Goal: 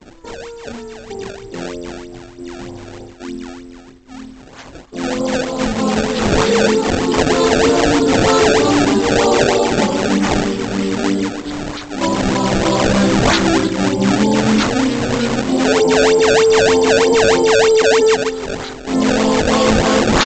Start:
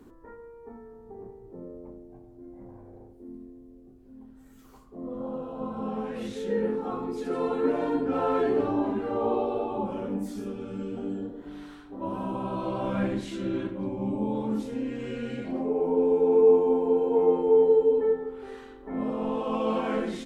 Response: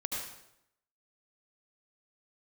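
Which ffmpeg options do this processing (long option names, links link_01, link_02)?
-af "agate=range=-33dB:threshold=-47dB:ratio=3:detection=peak,apsyclip=23.5dB,aexciter=amount=9.1:drive=8.9:freq=3700,lowshelf=frequency=67:gain=-2,aresample=16000,acrusher=samples=9:mix=1:aa=0.000001:lfo=1:lforange=14.4:lforate=3.2,aresample=44100,volume=-7.5dB"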